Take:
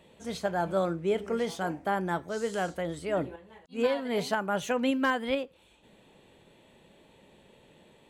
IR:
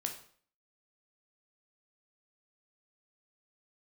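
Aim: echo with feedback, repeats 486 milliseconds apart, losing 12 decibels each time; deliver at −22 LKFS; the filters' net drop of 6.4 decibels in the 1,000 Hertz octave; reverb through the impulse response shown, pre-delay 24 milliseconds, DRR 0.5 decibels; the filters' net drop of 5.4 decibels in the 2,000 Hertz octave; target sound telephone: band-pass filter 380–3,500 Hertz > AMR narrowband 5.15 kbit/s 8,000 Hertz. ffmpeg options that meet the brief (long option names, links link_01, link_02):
-filter_complex "[0:a]equalizer=frequency=1000:width_type=o:gain=-8,equalizer=frequency=2000:width_type=o:gain=-3.5,aecho=1:1:486|972|1458:0.251|0.0628|0.0157,asplit=2[link_01][link_02];[1:a]atrim=start_sample=2205,adelay=24[link_03];[link_02][link_03]afir=irnorm=-1:irlink=0,volume=-1dB[link_04];[link_01][link_04]amix=inputs=2:normalize=0,highpass=380,lowpass=3500,volume=12dB" -ar 8000 -c:a libopencore_amrnb -b:a 5150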